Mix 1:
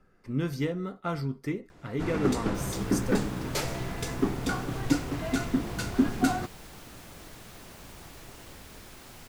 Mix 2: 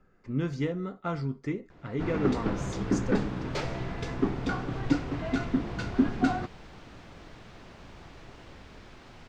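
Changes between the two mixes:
speech: add bell 7000 Hz +12 dB 0.32 oct; master: add air absorption 160 m

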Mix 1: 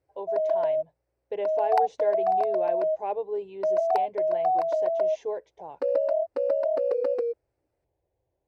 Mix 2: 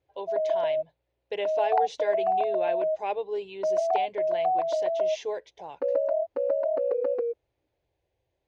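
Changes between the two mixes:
speech: remove LPF 1000 Hz 12 dB/oct; master: add air absorption 350 m

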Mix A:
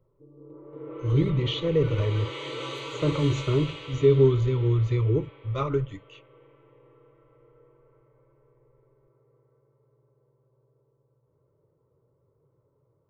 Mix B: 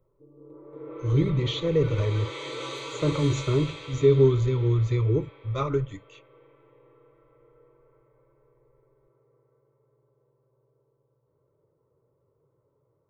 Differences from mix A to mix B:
speech: remove air absorption 77 m; first sound: add tone controls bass -4 dB, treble +5 dB; master: add notch 2900 Hz, Q 7.7

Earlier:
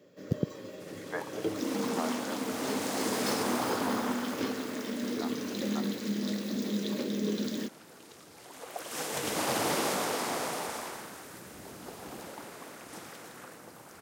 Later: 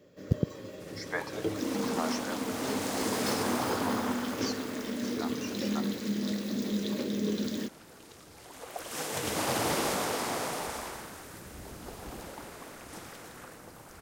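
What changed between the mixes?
speech: remove Gaussian blur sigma 4.4 samples; master: remove HPF 140 Hz 12 dB/oct

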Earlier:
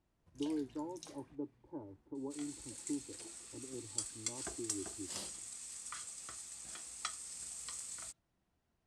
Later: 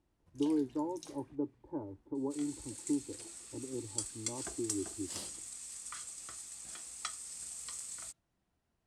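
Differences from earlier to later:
speech +6.5 dB; master: add high shelf 12000 Hz +7.5 dB

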